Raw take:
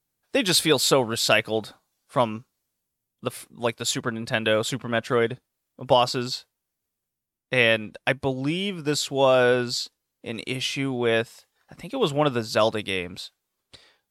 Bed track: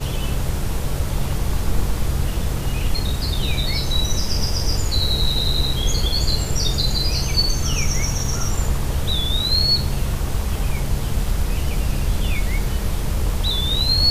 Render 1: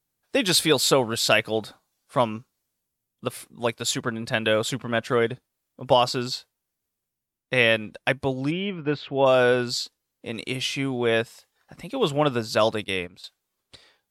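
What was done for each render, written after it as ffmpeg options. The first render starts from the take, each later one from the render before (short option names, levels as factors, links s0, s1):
-filter_complex "[0:a]asplit=3[s0][s1][s2];[s0]afade=t=out:st=8.5:d=0.02[s3];[s1]lowpass=f=2900:w=0.5412,lowpass=f=2900:w=1.3066,afade=t=in:st=8.5:d=0.02,afade=t=out:st=9.25:d=0.02[s4];[s2]afade=t=in:st=9.25:d=0.02[s5];[s3][s4][s5]amix=inputs=3:normalize=0,asettb=1/sr,asplit=3[s6][s7][s8];[s6]atrim=end=12.844[s9];[s7]atrim=start=12.84:end=13.24,asetpts=PTS-STARTPTS,afade=t=in:d=0.004:c=qsin,afade=t=out:st=0.396:d=0.004:c=qsin,agate=range=0.251:threshold=0.02:ratio=16:release=100:detection=peak[s10];[s8]atrim=start=13.236[s11];[s9][s10]acrossfade=d=0.004:c1=hsin:c2=qsin[s12];[s12][s11]acrossfade=d=0.004:c1=qsin:c2=hsin"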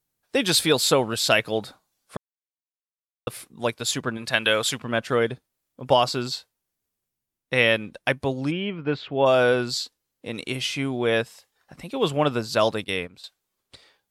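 -filter_complex "[0:a]asettb=1/sr,asplit=3[s0][s1][s2];[s0]atrim=end=4.174[s3];[s1]atrim=start=4.17:end=4.8,asetpts=PTS-STARTPTS,afade=t=in:d=0.004:c=qsin,afade=t=out:st=0.626:d=0.004:c=qsin,tiltshelf=f=740:g=-5.5[s4];[s2]atrim=start=4.796[s5];[s3][s4]acrossfade=d=0.004:c1=hsin:c2=qsin[s6];[s6][s5]acrossfade=d=0.004:c1=qsin:c2=hsin,asplit=3[s7][s8][s9];[s7]atrim=end=2.17,asetpts=PTS-STARTPTS,afade=t=out:st=2.166:d=0.004:c=hsin[s10];[s8]atrim=start=2.17:end=3.27,asetpts=PTS-STARTPTS,volume=0[s11];[s9]atrim=start=3.27,asetpts=PTS-STARTPTS,afade=t=in:d=0.004:c=hsin[s12];[s10][s11][s12]concat=n=3:v=0:a=1"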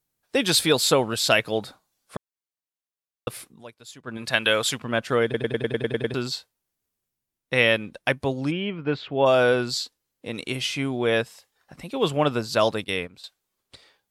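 -filter_complex "[0:a]asplit=12[s0][s1][s2][s3][s4][s5][s6][s7][s8][s9][s10][s11];[s0]atrim=end=3.64,asetpts=PTS-STARTPTS,afade=t=out:st=3.49:d=0.15:silence=0.125893[s12];[s1]atrim=start=3.64:end=4.04,asetpts=PTS-STARTPTS,volume=0.126[s13];[s2]atrim=start=4.04:end=5.342,asetpts=PTS-STARTPTS,afade=t=in:d=0.15:silence=0.125893[s14];[s3]atrim=start=5.238:end=5.342[s15];[s4]atrim=start=5.238:end=5.342[s16];[s5]atrim=start=5.238:end=5.342[s17];[s6]atrim=start=5.238:end=5.342[s18];[s7]atrim=start=5.238:end=5.342[s19];[s8]atrim=start=5.238:end=5.342[s20];[s9]atrim=start=5.238:end=5.342[s21];[s10]atrim=start=5.238:end=5.342[s22];[s11]atrim=start=6.138[s23];[s12][s13][s14]concat=n=3:v=0:a=1[s24];[s24][s15]acrossfade=d=0.004:c1=hsin:c2=hsin[s25];[s25][s16]acrossfade=d=0.004:c1=hsin:c2=hsin[s26];[s26][s17]acrossfade=d=0.004:c1=hsin:c2=hsin[s27];[s27][s18]acrossfade=d=0.004:c1=hsin:c2=hsin[s28];[s28][s19]acrossfade=d=0.004:c1=hsin:c2=hsin[s29];[s29][s20]acrossfade=d=0.004:c1=hsin:c2=hsin[s30];[s30][s21]acrossfade=d=0.004:c1=hsin:c2=hsin[s31];[s31][s22]acrossfade=d=0.004:c1=hsin:c2=hsin[s32];[s32][s23]acrossfade=d=0.004:c1=hsin:c2=hsin"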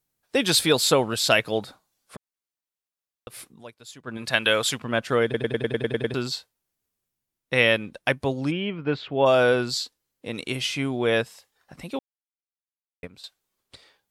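-filter_complex "[0:a]asplit=3[s0][s1][s2];[s0]afade=t=out:st=1.64:d=0.02[s3];[s1]acompressor=threshold=0.0158:ratio=6:attack=3.2:release=140:knee=1:detection=peak,afade=t=in:st=1.64:d=0.02,afade=t=out:st=3.37:d=0.02[s4];[s2]afade=t=in:st=3.37:d=0.02[s5];[s3][s4][s5]amix=inputs=3:normalize=0,asplit=3[s6][s7][s8];[s6]atrim=end=11.99,asetpts=PTS-STARTPTS,afade=t=out:st=11.986:d=0.004:c=hsin[s9];[s7]atrim=start=11.99:end=13.03,asetpts=PTS-STARTPTS,volume=0[s10];[s8]atrim=start=13.03,asetpts=PTS-STARTPTS,afade=t=in:d=0.004:c=hsin[s11];[s9][s10][s11]concat=n=3:v=0:a=1"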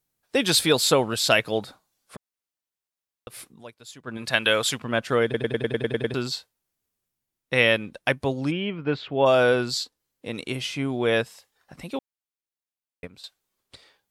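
-filter_complex "[0:a]asplit=3[s0][s1][s2];[s0]afade=t=out:st=9.83:d=0.02[s3];[s1]adynamicequalizer=threshold=0.00562:dfrequency=1500:dqfactor=0.7:tfrequency=1500:tqfactor=0.7:attack=5:release=100:ratio=0.375:range=3.5:mode=cutabove:tftype=highshelf,afade=t=in:st=9.83:d=0.02,afade=t=out:st=10.88:d=0.02[s4];[s2]afade=t=in:st=10.88:d=0.02[s5];[s3][s4][s5]amix=inputs=3:normalize=0"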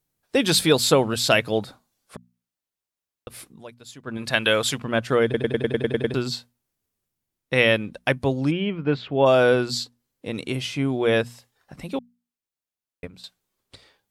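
-af "lowshelf=f=390:g=5.5,bandreject=f=60:t=h:w=6,bandreject=f=120:t=h:w=6,bandreject=f=180:t=h:w=6,bandreject=f=240:t=h:w=6"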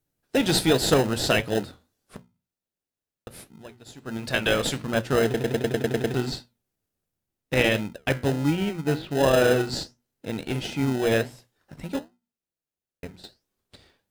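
-filter_complex "[0:a]flanger=delay=9.9:depth=8.7:regen=-71:speed=1.4:shape=sinusoidal,asplit=2[s0][s1];[s1]acrusher=samples=39:mix=1:aa=0.000001,volume=0.631[s2];[s0][s2]amix=inputs=2:normalize=0"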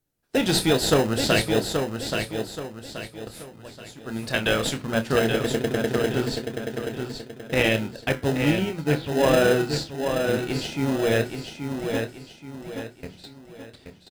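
-filter_complex "[0:a]asplit=2[s0][s1];[s1]adelay=27,volume=0.299[s2];[s0][s2]amix=inputs=2:normalize=0,asplit=2[s3][s4];[s4]aecho=0:1:828|1656|2484|3312|4140:0.501|0.19|0.0724|0.0275|0.0105[s5];[s3][s5]amix=inputs=2:normalize=0"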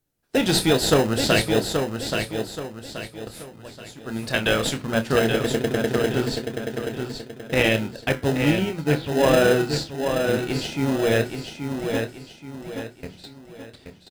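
-af "volume=1.19"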